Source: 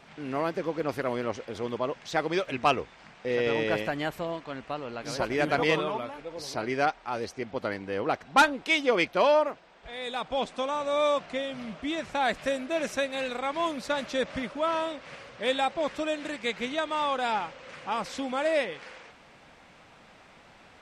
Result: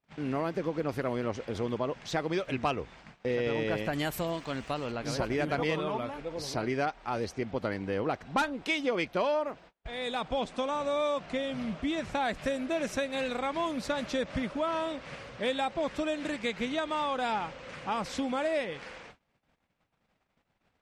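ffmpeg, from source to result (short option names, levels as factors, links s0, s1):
-filter_complex "[0:a]asettb=1/sr,asplit=3[s0][s1][s2];[s0]atrim=end=3.934[s3];[s1]atrim=start=3.93:end=4.92,asetpts=PTS-STARTPTS,afade=t=in:d=0.004:c=qsin,afade=t=out:st=0.986:d=0.004:c=qsin,aemphasis=mode=production:type=75kf[s4];[s2]atrim=start=4.916[s5];[s3][s4]acrossfade=d=0.004:c1=hsin:c2=qsin[s6];[s6][s5]acrossfade=d=0.004:c1=qsin:c2=hsin,agate=range=0.0178:threshold=0.00316:ratio=16:detection=peak,lowshelf=f=240:g=8.5,acompressor=threshold=0.0398:ratio=3"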